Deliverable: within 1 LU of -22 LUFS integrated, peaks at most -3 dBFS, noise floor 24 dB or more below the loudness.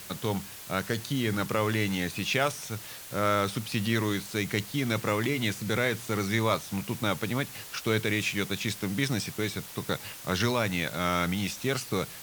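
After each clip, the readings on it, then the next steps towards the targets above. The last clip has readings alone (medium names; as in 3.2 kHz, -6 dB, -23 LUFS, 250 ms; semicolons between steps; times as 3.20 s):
noise floor -44 dBFS; noise floor target -54 dBFS; loudness -29.5 LUFS; peak level -11.5 dBFS; loudness target -22.0 LUFS
-> noise reduction 10 dB, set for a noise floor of -44 dBFS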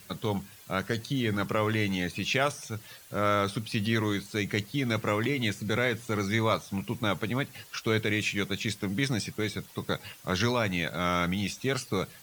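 noise floor -52 dBFS; noise floor target -54 dBFS
-> noise reduction 6 dB, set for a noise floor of -52 dBFS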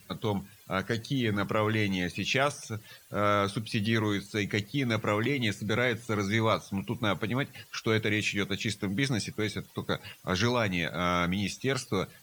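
noise floor -55 dBFS; loudness -29.5 LUFS; peak level -12.0 dBFS; loudness target -22.0 LUFS
-> trim +7.5 dB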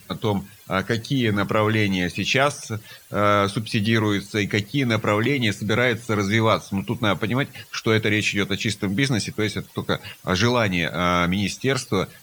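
loudness -22.0 LUFS; peak level -4.5 dBFS; noise floor -48 dBFS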